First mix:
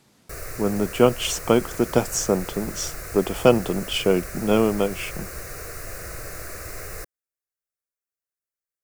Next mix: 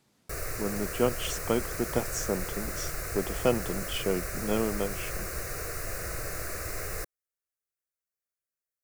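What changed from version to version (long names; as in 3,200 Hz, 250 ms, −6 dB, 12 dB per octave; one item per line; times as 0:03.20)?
speech −9.5 dB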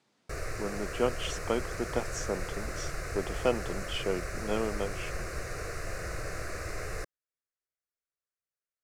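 speech: add high-pass filter 350 Hz 6 dB per octave
master: add high-frequency loss of the air 67 metres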